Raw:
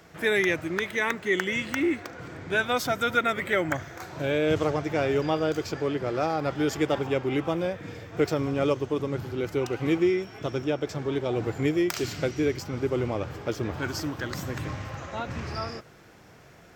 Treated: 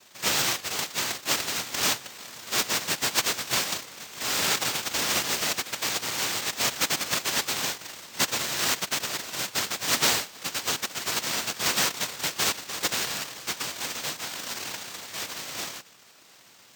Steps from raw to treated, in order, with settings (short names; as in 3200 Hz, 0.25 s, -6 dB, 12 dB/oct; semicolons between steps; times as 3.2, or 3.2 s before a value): noise vocoder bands 1; careless resampling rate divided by 2×, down filtered, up hold; gain -1.5 dB